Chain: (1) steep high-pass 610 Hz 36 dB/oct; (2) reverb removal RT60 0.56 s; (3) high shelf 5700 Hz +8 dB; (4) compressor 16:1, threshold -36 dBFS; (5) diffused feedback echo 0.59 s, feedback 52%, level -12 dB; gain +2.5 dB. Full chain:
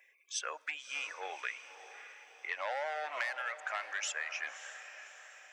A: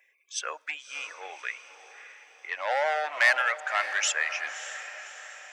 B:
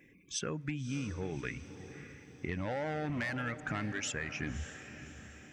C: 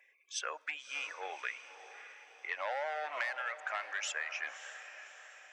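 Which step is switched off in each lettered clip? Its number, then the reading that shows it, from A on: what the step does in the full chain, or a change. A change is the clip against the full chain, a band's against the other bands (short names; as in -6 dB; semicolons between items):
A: 4, mean gain reduction 6.5 dB; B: 1, 500 Hz band +5.5 dB; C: 3, 8 kHz band -2.5 dB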